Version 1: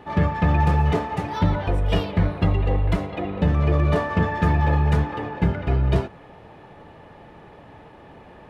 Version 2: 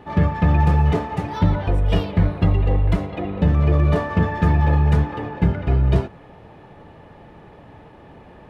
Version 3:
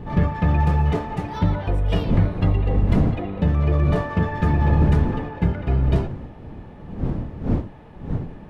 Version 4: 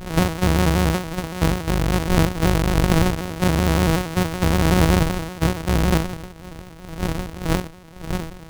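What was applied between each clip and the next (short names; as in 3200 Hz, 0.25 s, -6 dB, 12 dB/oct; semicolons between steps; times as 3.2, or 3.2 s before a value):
low shelf 350 Hz +4.5 dB; gain -1 dB
wind noise 180 Hz -24 dBFS; gain -2.5 dB
sample sorter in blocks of 256 samples; shaped vibrato square 5.3 Hz, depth 100 cents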